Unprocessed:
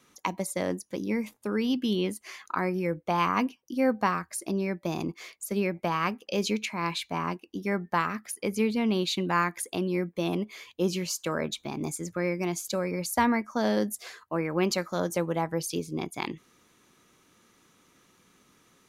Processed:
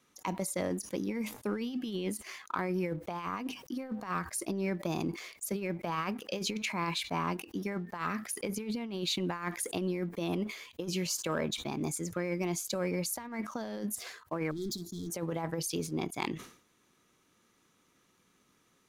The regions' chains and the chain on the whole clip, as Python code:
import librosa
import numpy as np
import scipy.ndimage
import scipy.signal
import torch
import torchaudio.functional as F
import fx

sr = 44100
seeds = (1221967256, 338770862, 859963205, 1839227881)

y = fx.chain(x, sr, fx.overload_stage(gain_db=32.5),
    fx.brickwall_bandstop(low_hz=440.0, high_hz=3200.0), at=(14.51, 15.1))
y = fx.over_compress(y, sr, threshold_db=-29.0, ratio=-0.5)
y = fx.leveller(y, sr, passes=1)
y = fx.sustainer(y, sr, db_per_s=110.0)
y = y * librosa.db_to_amplitude(-7.5)